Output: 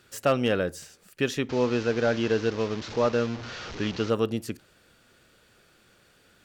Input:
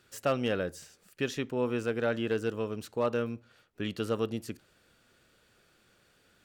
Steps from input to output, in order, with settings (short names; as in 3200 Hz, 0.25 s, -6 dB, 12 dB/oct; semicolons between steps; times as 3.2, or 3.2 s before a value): 1.49–4.1 delta modulation 32 kbps, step -37.5 dBFS; gain +5.5 dB